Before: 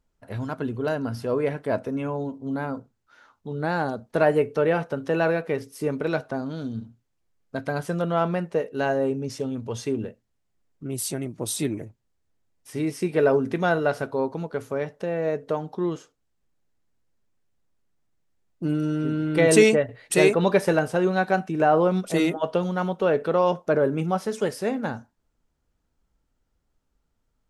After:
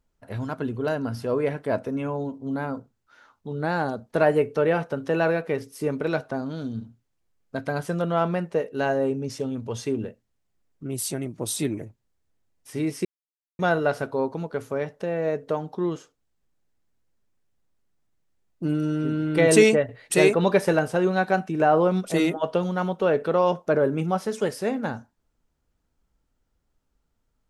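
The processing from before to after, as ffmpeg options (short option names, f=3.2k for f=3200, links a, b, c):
-filter_complex "[0:a]asplit=3[a][b][c];[a]atrim=end=13.05,asetpts=PTS-STARTPTS,afade=t=out:st=13.046:d=0.004:c=hsin[d];[b]atrim=start=13.05:end=13.59,asetpts=PTS-STARTPTS,volume=0[e];[c]atrim=start=13.59,asetpts=PTS-STARTPTS,afade=t=in:d=0.004:c=hsin[f];[d][e][f]concat=n=3:v=0:a=1"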